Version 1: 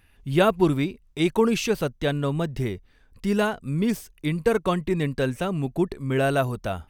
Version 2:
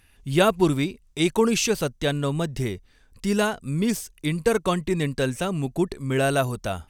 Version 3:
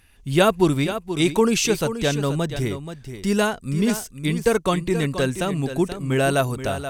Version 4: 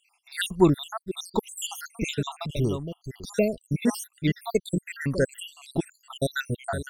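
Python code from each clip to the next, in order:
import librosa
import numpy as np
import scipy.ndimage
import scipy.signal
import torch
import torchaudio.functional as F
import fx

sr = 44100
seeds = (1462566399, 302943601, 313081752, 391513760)

y1 = fx.peak_eq(x, sr, hz=7500.0, db=9.0, octaves=1.7)
y2 = y1 + 10.0 ** (-10.5 / 20.0) * np.pad(y1, (int(480 * sr / 1000.0), 0))[:len(y1)]
y2 = F.gain(torch.from_numpy(y2), 2.0).numpy()
y3 = fx.spec_dropout(y2, sr, seeds[0], share_pct=76)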